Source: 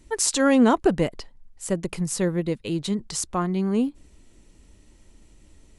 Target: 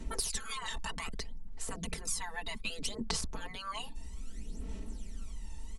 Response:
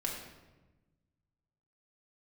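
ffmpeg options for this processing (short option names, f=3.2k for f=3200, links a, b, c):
-filter_complex "[0:a]afftfilt=real='re*lt(hypot(re,im),0.0891)':imag='im*lt(hypot(re,im),0.0891)':win_size=1024:overlap=0.75,acrossover=split=180[a][b];[b]acompressor=threshold=-40dB:ratio=4[c];[a][c]amix=inputs=2:normalize=0,aecho=1:1:4.5:0.89,asplit=2[d][e];[e]adelay=1516,volume=-26dB,highshelf=f=4k:g=-34.1[f];[d][f]amix=inputs=2:normalize=0,aphaser=in_gain=1:out_gain=1:delay=1.1:decay=0.67:speed=0.63:type=sinusoidal,equalizer=f=2k:w=1.5:g=-2"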